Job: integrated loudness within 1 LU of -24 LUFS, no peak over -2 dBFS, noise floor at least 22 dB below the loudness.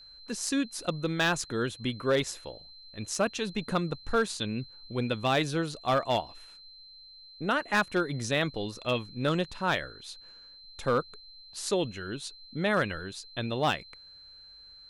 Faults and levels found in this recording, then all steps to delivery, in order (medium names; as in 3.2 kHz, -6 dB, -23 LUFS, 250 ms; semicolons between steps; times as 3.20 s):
clipped samples 0.3%; clipping level -18.5 dBFS; steady tone 4.1 kHz; tone level -49 dBFS; loudness -30.5 LUFS; peak level -18.5 dBFS; loudness target -24.0 LUFS
-> clip repair -18.5 dBFS; band-stop 4.1 kHz, Q 30; trim +6.5 dB